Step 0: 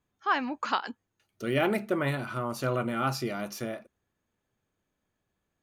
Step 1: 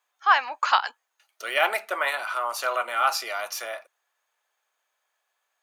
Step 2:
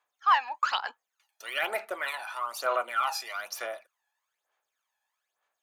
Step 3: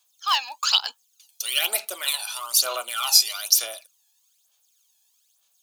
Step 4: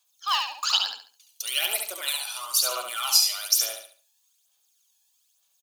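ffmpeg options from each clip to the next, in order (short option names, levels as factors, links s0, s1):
-af "highpass=f=700:w=0.5412,highpass=f=700:w=1.3066,volume=2.66"
-af "aphaser=in_gain=1:out_gain=1:delay=1.2:decay=0.65:speed=1.1:type=sinusoidal,volume=0.398"
-af "aexciter=amount=11.4:drive=5.7:freq=2900,volume=0.75"
-af "aecho=1:1:70|140|210|280:0.562|0.174|0.054|0.0168,volume=0.668"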